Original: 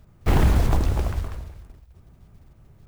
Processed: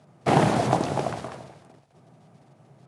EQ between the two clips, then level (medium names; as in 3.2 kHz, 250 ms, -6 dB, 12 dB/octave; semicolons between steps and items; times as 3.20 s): Chebyshev band-pass 130–10000 Hz, order 4; peaking EQ 710 Hz +9 dB 0.73 oct; +2.5 dB